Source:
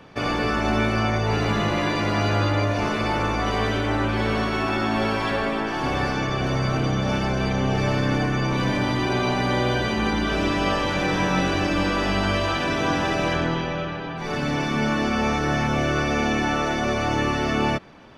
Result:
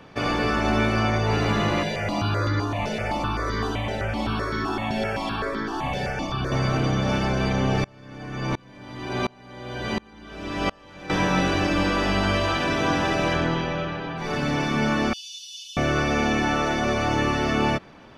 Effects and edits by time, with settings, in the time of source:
1.83–6.52 step phaser 7.8 Hz 310–2700 Hz
7.84–11.1 dB-ramp tremolo swelling 1.4 Hz, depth 31 dB
15.13–15.77 steep high-pass 2900 Hz 96 dB/oct

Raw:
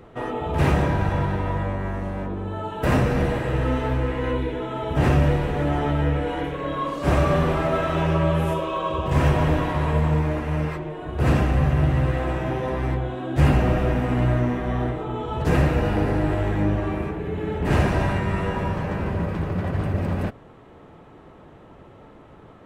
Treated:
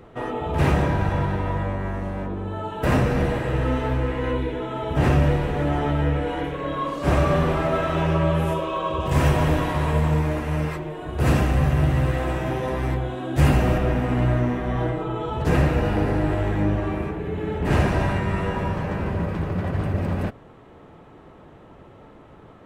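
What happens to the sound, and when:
9–13.78 high shelf 5400 Hz +9 dB
14.76–15.3 comb 6.2 ms, depth 57%

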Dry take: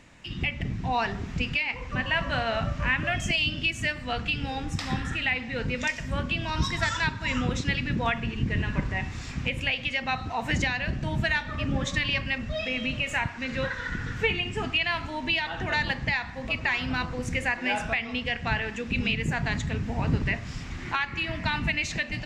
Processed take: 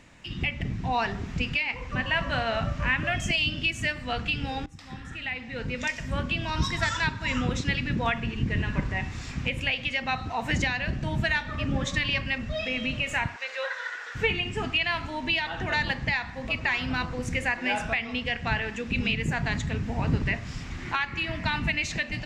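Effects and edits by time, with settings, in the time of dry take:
4.66–6.11 fade in, from -20.5 dB
13.36–14.15 steep high-pass 500 Hz

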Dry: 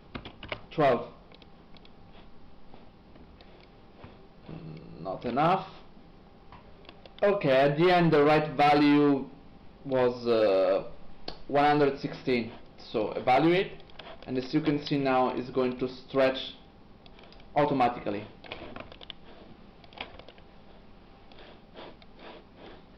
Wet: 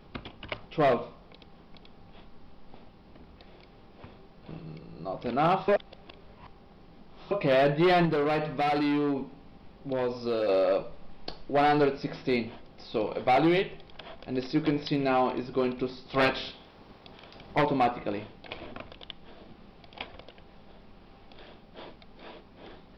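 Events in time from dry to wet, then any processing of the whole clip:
5.68–7.31 reverse
8.05–10.49 compressor, threshold -25 dBFS
16.05–17.61 spectral limiter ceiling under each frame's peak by 14 dB

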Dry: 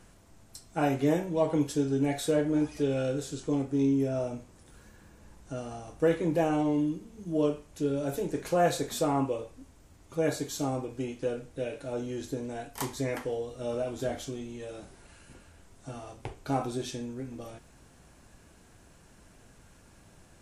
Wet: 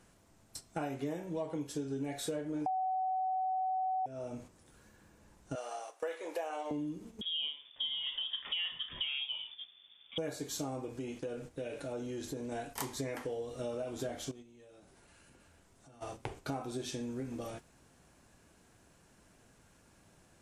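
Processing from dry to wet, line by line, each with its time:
2.66–4.06 bleep 752 Hz -12 dBFS
5.55–6.71 HPF 520 Hz 24 dB/oct
7.21–10.18 inverted band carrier 3500 Hz
10.98–12.52 compressor 2:1, threshold -41 dBFS
14.31–16.01 compressor 5:1, threshold -50 dBFS
whole clip: gate -47 dBFS, range -8 dB; low shelf 69 Hz -9 dB; compressor 6:1, threshold -38 dBFS; gain +2.5 dB

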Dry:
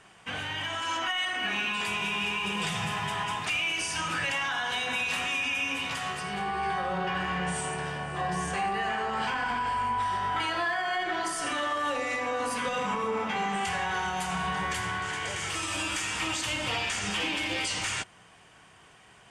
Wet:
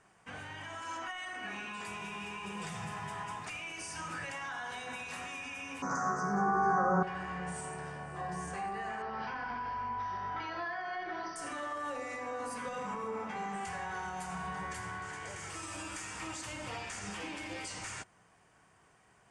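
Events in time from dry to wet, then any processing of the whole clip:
5.82–7.03 EQ curve 110 Hz 0 dB, 190 Hz +14 dB, 670 Hz +9 dB, 970 Hz +10 dB, 1400 Hz +15 dB, 2300 Hz -13 dB, 3200 Hz -29 dB, 6200 Hz +14 dB, 12000 Hz -30 dB
9.02–11.36 brick-wall FIR low-pass 6100 Hz
whole clip: LPF 11000 Hz 24 dB/oct; bell 3200 Hz -10 dB 0.89 oct; gain -8 dB

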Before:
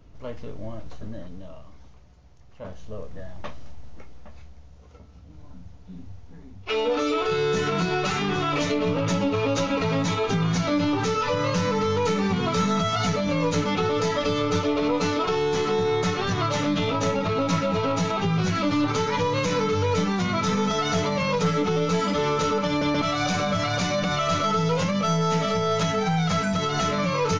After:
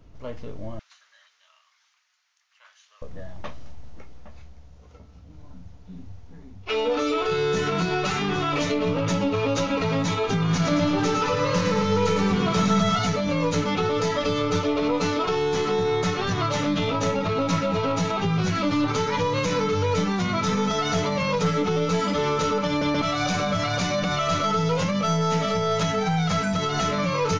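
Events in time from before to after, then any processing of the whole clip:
0.79–3.02 HPF 1400 Hz 24 dB/oct
10.38–12.99 feedback echo 0.111 s, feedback 51%, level -5 dB

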